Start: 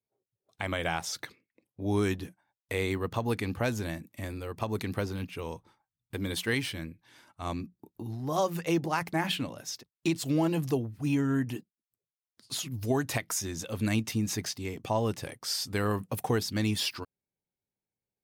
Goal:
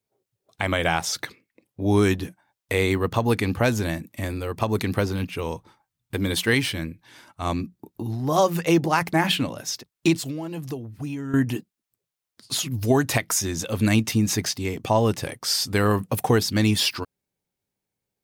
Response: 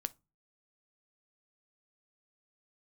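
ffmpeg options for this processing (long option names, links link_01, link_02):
-filter_complex "[0:a]asettb=1/sr,asplit=3[link_01][link_02][link_03];[link_01]atrim=end=10.154[link_04];[link_02]atrim=start=10.15:end=11.34,asetpts=PTS-STARTPTS,afade=type=in:duration=0.004:curve=qsin,afade=type=out:start_time=1.186:duration=0.004:curve=qsin,acompressor=threshold=-38dB:ratio=6[link_05];[link_03]atrim=start=11.336[link_06];[link_04][link_05]acrossfade=duration=0.004:curve1=hsin:curve2=qsin[link_07];[link_07][link_06]acrossfade=duration=0.004:curve1=qsin:curve2=hsin,volume=8.5dB"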